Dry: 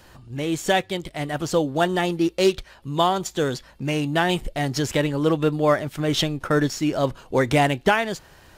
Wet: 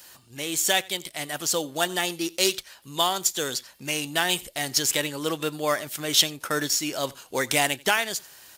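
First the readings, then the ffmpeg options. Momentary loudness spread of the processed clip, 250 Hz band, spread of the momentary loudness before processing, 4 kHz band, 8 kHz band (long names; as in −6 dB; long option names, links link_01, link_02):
9 LU, −9.5 dB, 9 LU, +4.0 dB, +10.0 dB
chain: -filter_complex "[0:a]highpass=frequency=260:poles=1,crystalizer=i=7:c=0,asplit=2[link_01][link_02];[link_02]aecho=0:1:88:0.0668[link_03];[link_01][link_03]amix=inputs=2:normalize=0,volume=-7.5dB"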